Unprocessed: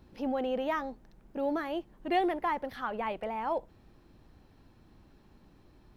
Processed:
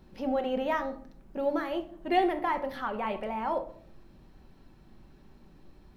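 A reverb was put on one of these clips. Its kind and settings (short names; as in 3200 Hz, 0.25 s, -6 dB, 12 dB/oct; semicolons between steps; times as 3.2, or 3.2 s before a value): shoebox room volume 700 m³, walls furnished, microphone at 1.1 m; gain +1 dB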